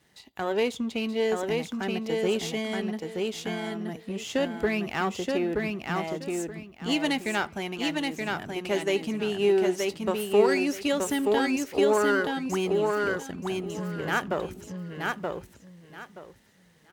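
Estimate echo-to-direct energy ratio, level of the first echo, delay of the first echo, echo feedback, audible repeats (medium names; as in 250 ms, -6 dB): -3.0 dB, -3.0 dB, 926 ms, 22%, 3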